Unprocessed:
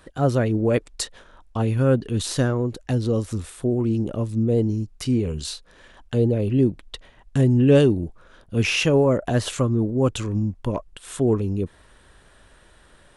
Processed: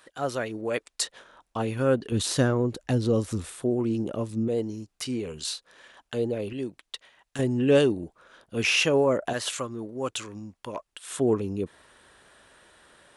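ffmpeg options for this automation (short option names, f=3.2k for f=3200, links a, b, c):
-af "asetnsamples=n=441:p=0,asendcmd='1.01 highpass f 400;2.12 highpass f 130;3.55 highpass f 300;4.48 highpass f 670;6.53 highpass f 1400;7.39 highpass f 480;9.33 highpass f 1200;11.11 highpass f 320',highpass=f=1.1k:p=1"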